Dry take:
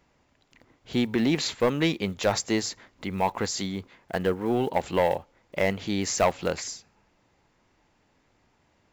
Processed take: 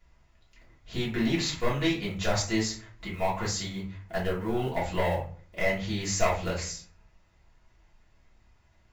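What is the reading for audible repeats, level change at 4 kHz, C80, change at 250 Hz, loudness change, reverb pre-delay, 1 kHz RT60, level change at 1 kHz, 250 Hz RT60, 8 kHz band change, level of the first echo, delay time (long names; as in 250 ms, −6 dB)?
no echo audible, −1.5 dB, 13.0 dB, −3.5 dB, −2.5 dB, 3 ms, 0.40 s, −3.5 dB, 0.60 s, −1.5 dB, no echo audible, no echo audible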